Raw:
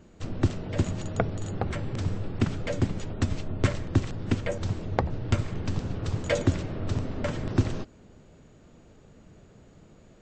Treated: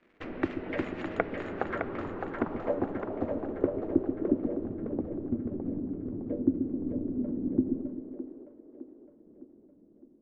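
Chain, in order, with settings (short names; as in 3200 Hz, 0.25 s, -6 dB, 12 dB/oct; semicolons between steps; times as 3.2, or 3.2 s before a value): expander -44 dBFS; in parallel at +2 dB: compressor, threshold -34 dBFS, peak gain reduction 17 dB; on the sum: resonant low shelf 200 Hz -12.5 dB, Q 1.5; crackle 380/s -48 dBFS; low-pass sweep 2100 Hz -> 260 Hz, 1.19–4.78; on a send: split-band echo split 360 Hz, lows 0.13 s, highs 0.611 s, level -5.5 dB; on the sum: gain -6 dB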